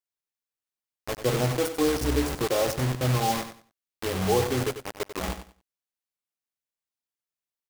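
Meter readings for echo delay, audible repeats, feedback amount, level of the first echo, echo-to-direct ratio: 94 ms, 2, 22%, -10.5 dB, -10.5 dB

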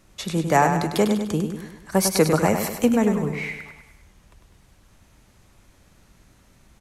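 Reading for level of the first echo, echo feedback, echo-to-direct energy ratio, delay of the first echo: -7.0 dB, 50%, -6.0 dB, 0.1 s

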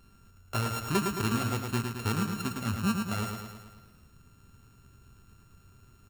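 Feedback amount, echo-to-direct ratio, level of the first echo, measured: 58%, -3.0 dB, -5.0 dB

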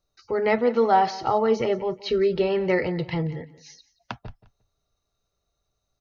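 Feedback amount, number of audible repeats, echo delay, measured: 19%, 2, 0.176 s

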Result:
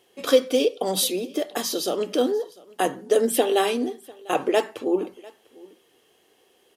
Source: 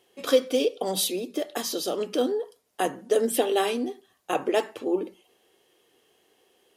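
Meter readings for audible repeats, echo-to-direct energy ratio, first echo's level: 1, -23.5 dB, -23.5 dB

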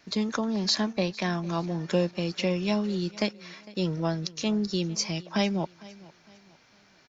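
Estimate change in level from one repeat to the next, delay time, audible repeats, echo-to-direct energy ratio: -9.0 dB, 0.455 s, 2, -20.5 dB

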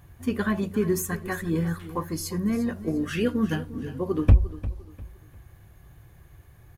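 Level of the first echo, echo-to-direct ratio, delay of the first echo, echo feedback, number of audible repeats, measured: -15.0 dB, -14.5 dB, 0.35 s, 33%, 3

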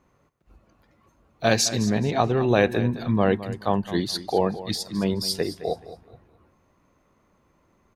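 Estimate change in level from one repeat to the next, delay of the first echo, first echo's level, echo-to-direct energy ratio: -11.0 dB, 0.213 s, -14.5 dB, -14.0 dB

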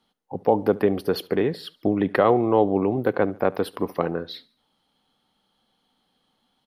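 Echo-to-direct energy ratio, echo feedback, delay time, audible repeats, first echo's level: -22.0 dB, 45%, 71 ms, 2, -23.0 dB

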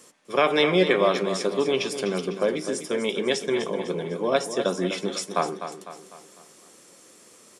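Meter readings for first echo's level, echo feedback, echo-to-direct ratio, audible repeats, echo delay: -10.0 dB, 47%, -9.0 dB, 4, 0.251 s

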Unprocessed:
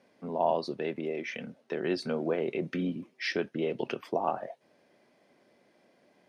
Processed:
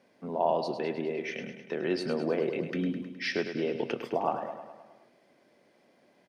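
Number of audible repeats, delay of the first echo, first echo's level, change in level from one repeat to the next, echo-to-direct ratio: 6, 0.104 s, -9.0 dB, -4.5 dB, -7.0 dB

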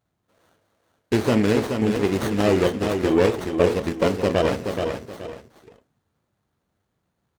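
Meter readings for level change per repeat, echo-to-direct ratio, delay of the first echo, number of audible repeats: -11.0 dB, -5.5 dB, 0.426 s, 2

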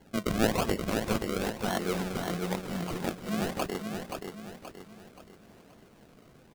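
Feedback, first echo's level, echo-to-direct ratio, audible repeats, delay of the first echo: 42%, -5.5 dB, -4.5 dB, 4, 0.527 s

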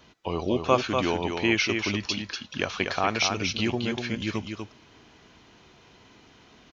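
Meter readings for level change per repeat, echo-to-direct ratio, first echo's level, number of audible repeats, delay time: no steady repeat, -5.5 dB, -5.5 dB, 1, 0.242 s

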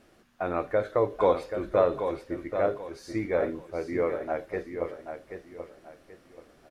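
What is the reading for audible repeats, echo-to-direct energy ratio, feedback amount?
3, -7.5 dB, 31%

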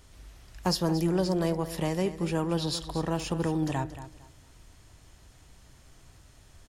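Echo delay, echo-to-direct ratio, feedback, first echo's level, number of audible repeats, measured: 0.227 s, -13.0 dB, 23%, -13.0 dB, 2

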